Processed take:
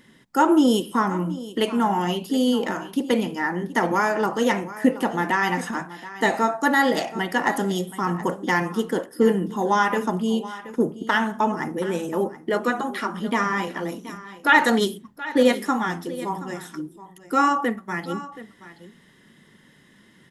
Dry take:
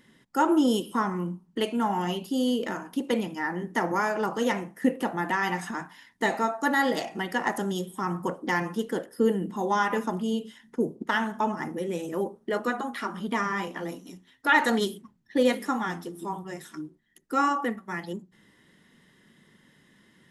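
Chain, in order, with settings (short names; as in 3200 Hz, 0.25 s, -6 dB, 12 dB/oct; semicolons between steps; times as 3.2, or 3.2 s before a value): echo 0.726 s -16 dB; gain +5 dB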